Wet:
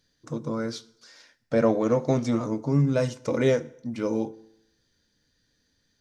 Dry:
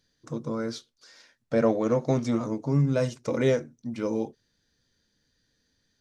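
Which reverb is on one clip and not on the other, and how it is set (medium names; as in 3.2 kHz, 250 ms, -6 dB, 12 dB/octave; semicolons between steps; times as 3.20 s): FDN reverb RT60 0.79 s, low-frequency decay 1×, high-frequency decay 0.85×, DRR 16.5 dB; trim +1.5 dB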